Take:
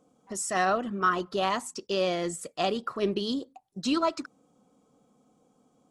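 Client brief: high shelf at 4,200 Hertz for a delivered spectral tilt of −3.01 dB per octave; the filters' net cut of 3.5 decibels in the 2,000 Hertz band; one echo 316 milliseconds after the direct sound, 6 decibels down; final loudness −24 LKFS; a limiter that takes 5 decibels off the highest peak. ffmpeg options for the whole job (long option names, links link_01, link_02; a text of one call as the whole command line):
ffmpeg -i in.wav -af "equalizer=frequency=2000:width_type=o:gain=-7,highshelf=frequency=4200:gain=8.5,alimiter=limit=-18dB:level=0:latency=1,aecho=1:1:316:0.501,volume=5.5dB" out.wav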